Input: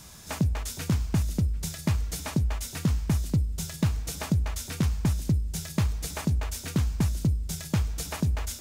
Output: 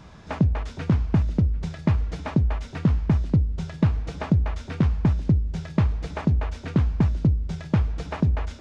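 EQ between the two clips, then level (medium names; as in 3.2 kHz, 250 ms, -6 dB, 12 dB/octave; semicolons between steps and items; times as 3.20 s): tape spacing loss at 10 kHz 37 dB; bass shelf 200 Hz -4.5 dB; +8.5 dB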